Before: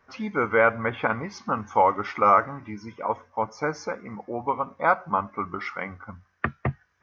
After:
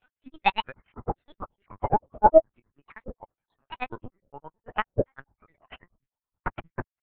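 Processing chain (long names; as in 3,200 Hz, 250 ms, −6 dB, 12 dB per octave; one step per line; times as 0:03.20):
in parallel at +2 dB: brickwall limiter −15 dBFS, peak gain reduction 7 dB
on the sum: granular cloud, grains 9.5 per second, spray 182 ms, pitch spread up and down by 12 semitones
linear-prediction vocoder at 8 kHz pitch kept
expander for the loud parts 2.5 to 1, over −34 dBFS
level +2.5 dB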